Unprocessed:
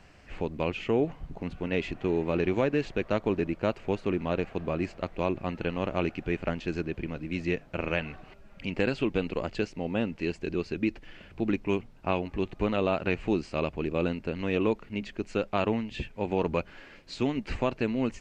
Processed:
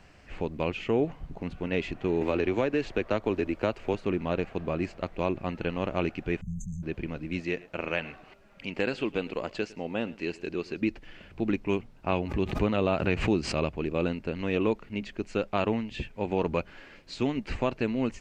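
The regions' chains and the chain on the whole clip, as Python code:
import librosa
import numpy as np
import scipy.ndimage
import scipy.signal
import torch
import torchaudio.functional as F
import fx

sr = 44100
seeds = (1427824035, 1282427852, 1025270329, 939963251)

y = fx.chain(x, sr, fx.peak_eq(hz=160.0, db=-9.5, octaves=0.46),
    fx.band_squash(depth_pct=70), at=(2.21, 3.94))
y = fx.chain(y, sr, fx.brickwall_bandstop(low_hz=210.0, high_hz=6100.0),
    fx.sustainer(db_per_s=28.0), at=(6.41, 6.83))
y = fx.chain(y, sr, fx.low_shelf(hz=160.0, db=-11.5),
    fx.echo_single(ms=107, db=-20.5), at=(7.4, 10.82))
y = fx.chain(y, sr, fx.highpass(hz=60.0, slope=12),
    fx.low_shelf(hz=110.0, db=8.0),
    fx.pre_swell(db_per_s=75.0), at=(12.12, 13.73))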